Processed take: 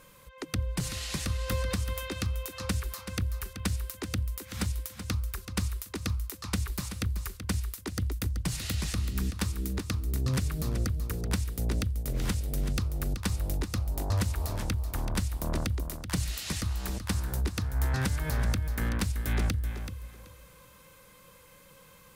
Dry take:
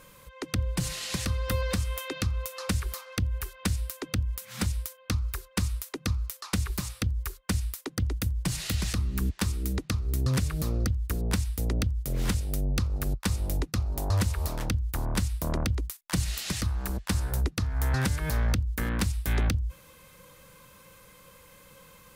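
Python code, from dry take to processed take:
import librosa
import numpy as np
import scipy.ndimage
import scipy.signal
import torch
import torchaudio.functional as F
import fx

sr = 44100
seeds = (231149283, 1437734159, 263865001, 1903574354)

y = fx.echo_feedback(x, sr, ms=380, feedback_pct=20, wet_db=-9.5)
y = y * 10.0 ** (-2.5 / 20.0)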